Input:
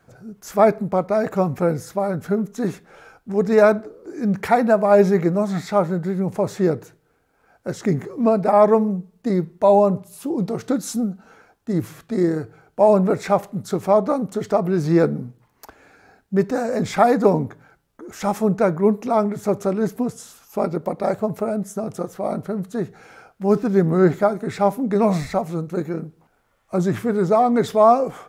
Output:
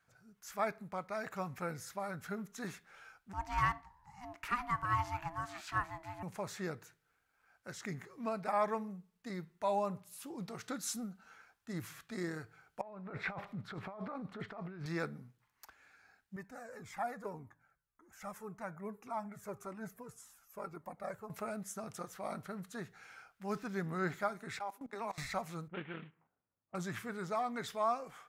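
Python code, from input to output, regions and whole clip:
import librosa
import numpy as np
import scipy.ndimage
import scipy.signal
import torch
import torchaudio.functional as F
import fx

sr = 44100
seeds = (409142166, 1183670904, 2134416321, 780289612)

y = fx.chain(x, sr, fx.peak_eq(hz=170.0, db=-7.0, octaves=0.59),
    fx.ring_mod(carrier_hz=490.0), at=(3.33, 6.23))
y = fx.chain(y, sr, fx.air_absorb(metres=430.0),
    fx.echo_wet_highpass(ms=81, feedback_pct=42, hz=5300.0, wet_db=-5.5),
    fx.over_compress(threshold_db=-26.0, ratio=-1.0), at=(12.81, 14.86))
y = fx.chain(y, sr, fx.peak_eq(hz=3800.0, db=-11.5, octaves=1.6),
    fx.comb_cascade(direction='falling', hz=1.8), at=(16.36, 21.3))
y = fx.chain(y, sr, fx.steep_highpass(hz=220.0, slope=72),
    fx.peak_eq(hz=850.0, db=8.0, octaves=0.55),
    fx.level_steps(step_db=22), at=(24.59, 25.18))
y = fx.chain(y, sr, fx.cvsd(bps=16000),
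    fx.highpass(hz=110.0, slope=12),
    fx.env_lowpass(base_hz=300.0, full_db=-22.5), at=(25.68, 26.75))
y = fx.peak_eq(y, sr, hz=1500.0, db=7.0, octaves=2.3)
y = fx.rider(y, sr, range_db=3, speed_s=2.0)
y = fx.tone_stack(y, sr, knobs='5-5-5')
y = y * librosa.db_to_amplitude(-5.0)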